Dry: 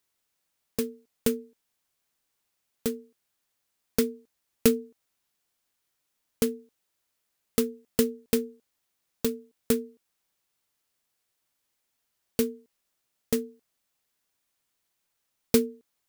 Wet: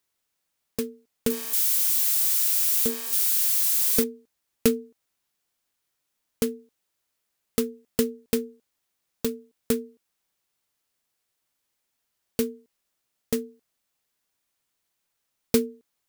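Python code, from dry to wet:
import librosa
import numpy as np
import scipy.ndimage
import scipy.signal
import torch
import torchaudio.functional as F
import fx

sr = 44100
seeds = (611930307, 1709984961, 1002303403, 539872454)

y = fx.crossing_spikes(x, sr, level_db=-19.0, at=(1.3, 4.04))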